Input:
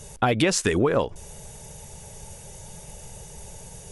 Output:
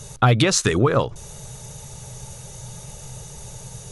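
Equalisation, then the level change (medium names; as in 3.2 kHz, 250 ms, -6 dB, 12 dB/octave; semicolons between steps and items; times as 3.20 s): graphic EQ with 31 bands 125 Hz +12 dB, 1.25 kHz +8 dB, 4 kHz +8 dB, 6.3 kHz +5 dB; +1.5 dB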